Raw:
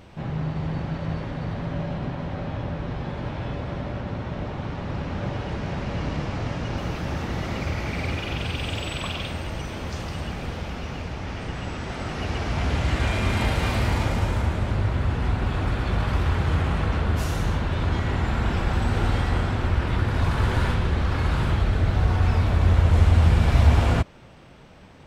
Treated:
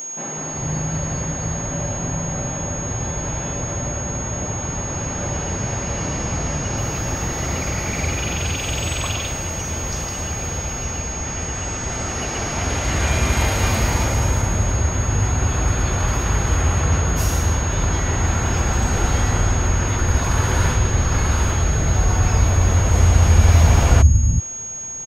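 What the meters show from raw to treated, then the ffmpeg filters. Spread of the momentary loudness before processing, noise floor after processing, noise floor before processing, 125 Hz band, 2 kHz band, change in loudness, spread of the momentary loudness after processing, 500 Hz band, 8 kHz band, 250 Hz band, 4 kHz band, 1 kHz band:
11 LU, −28 dBFS, −34 dBFS, +4.0 dB, +4.5 dB, +5.0 dB, 9 LU, +4.0 dB, +24.5 dB, +2.5 dB, +5.0 dB, +4.5 dB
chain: -filter_complex "[0:a]aeval=exprs='val(0)+0.0126*sin(2*PI*6600*n/s)':channel_layout=same,acrossover=split=210[link_01][link_02];[link_01]adelay=370[link_03];[link_03][link_02]amix=inputs=2:normalize=0,aexciter=amount=1.8:drive=5.4:freq=5200,volume=4.5dB"

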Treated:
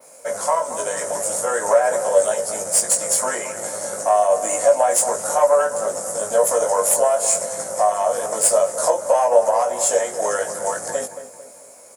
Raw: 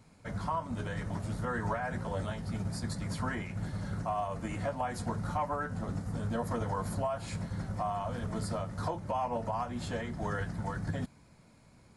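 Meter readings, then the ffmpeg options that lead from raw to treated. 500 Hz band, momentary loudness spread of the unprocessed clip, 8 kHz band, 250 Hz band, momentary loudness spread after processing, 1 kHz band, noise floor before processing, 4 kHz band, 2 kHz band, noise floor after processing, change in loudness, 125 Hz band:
+21.0 dB, 4 LU, +32.0 dB, −3.0 dB, 9 LU, +14.5 dB, −60 dBFS, +14.5 dB, +11.0 dB, −44 dBFS, +17.0 dB, below −10 dB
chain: -filter_complex "[0:a]aexciter=amount=12.5:drive=1.2:freq=5900,asplit=2[link_01][link_02];[link_02]alimiter=level_in=2.5dB:limit=-24dB:level=0:latency=1,volume=-2.5dB,volume=-3dB[link_03];[link_01][link_03]amix=inputs=2:normalize=0,aeval=exprs='0.224*(cos(1*acos(clip(val(0)/0.224,-1,1)))-cos(1*PI/2))+0.0708*(cos(2*acos(clip(val(0)/0.224,-1,1)))-cos(2*PI/2))':channel_layout=same,adynamicequalizer=threshold=0.00562:dfrequency=7400:dqfactor=1.5:tfrequency=7400:tqfactor=1.5:attack=5:release=100:ratio=0.375:range=4:mode=boostabove:tftype=bell,highpass=frequency=550:width_type=q:width=6.3,asplit=2[link_04][link_05];[link_05]adelay=19,volume=-4dB[link_06];[link_04][link_06]amix=inputs=2:normalize=0,asplit=2[link_07][link_08];[link_08]adelay=223,lowpass=frequency=1600:poles=1,volume=-10.5dB,asplit=2[link_09][link_10];[link_10]adelay=223,lowpass=frequency=1600:poles=1,volume=0.46,asplit=2[link_11][link_12];[link_12]adelay=223,lowpass=frequency=1600:poles=1,volume=0.46,asplit=2[link_13][link_14];[link_14]adelay=223,lowpass=frequency=1600:poles=1,volume=0.46,asplit=2[link_15][link_16];[link_16]adelay=223,lowpass=frequency=1600:poles=1,volume=0.46[link_17];[link_07][link_09][link_11][link_13][link_15][link_17]amix=inputs=6:normalize=0,volume=3.5dB"

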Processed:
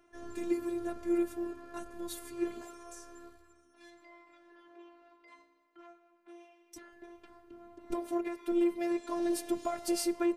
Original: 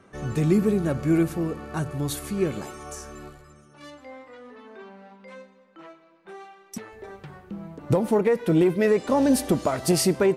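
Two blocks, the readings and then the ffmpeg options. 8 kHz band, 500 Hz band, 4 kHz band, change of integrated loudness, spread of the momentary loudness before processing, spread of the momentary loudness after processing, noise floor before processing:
−11.0 dB, −12.0 dB, −11.0 dB, −11.5 dB, 20 LU, 23 LU, −56 dBFS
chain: -af "afftfilt=real='hypot(re,im)*cos(PI*b)':imag='0':win_size=512:overlap=0.75,volume=-7.5dB"

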